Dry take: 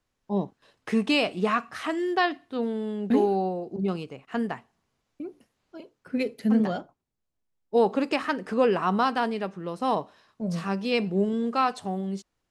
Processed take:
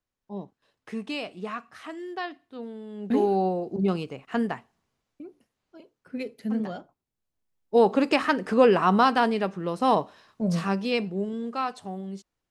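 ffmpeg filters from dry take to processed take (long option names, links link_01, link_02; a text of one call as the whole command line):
ffmpeg -i in.wav -af "volume=13dB,afade=type=in:start_time=2.89:duration=0.58:silence=0.237137,afade=type=out:start_time=4.24:duration=1.01:silence=0.354813,afade=type=in:start_time=6.78:duration=1.39:silence=0.316228,afade=type=out:start_time=10.55:duration=0.6:silence=0.354813" out.wav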